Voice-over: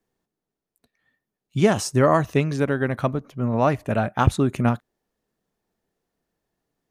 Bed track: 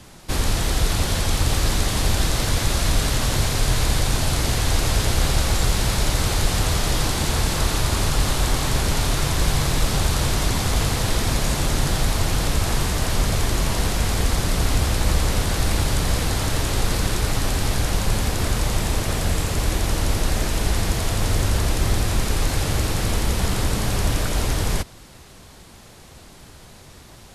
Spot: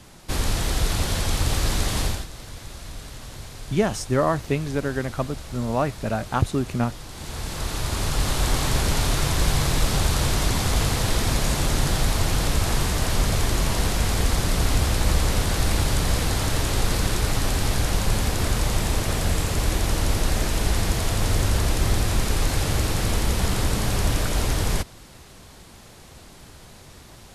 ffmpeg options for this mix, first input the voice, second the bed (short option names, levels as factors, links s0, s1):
-filter_complex "[0:a]adelay=2150,volume=0.668[s0];[1:a]volume=5.01,afade=t=out:st=2.01:d=0.25:silence=0.177828,afade=t=in:st=7.07:d=1.49:silence=0.149624[s1];[s0][s1]amix=inputs=2:normalize=0"